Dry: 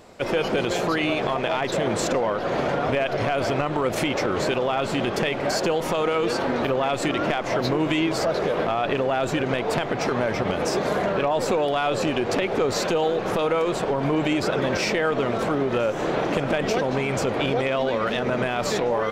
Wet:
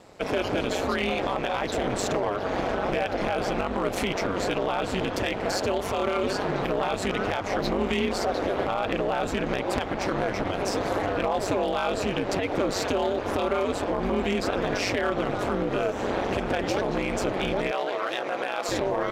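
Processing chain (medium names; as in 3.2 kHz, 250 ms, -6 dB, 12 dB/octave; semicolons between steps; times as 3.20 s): ring modulator 97 Hz; one-sided clip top -19.5 dBFS; 17.71–18.69 s: high-pass 430 Hz 12 dB/octave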